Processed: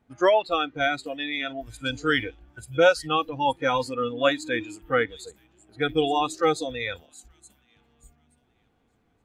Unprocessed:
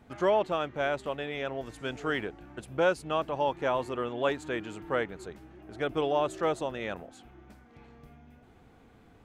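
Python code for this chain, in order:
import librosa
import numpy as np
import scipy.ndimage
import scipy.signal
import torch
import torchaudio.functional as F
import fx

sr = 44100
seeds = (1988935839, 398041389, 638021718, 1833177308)

y = fx.echo_wet_highpass(x, sr, ms=874, feedback_pct=33, hz=3200.0, wet_db=-8.0)
y = fx.noise_reduce_blind(y, sr, reduce_db=19)
y = fx.dynamic_eq(y, sr, hz=4400.0, q=1.4, threshold_db=-57.0, ratio=4.0, max_db=8)
y = F.gain(torch.from_numpy(y), 8.0).numpy()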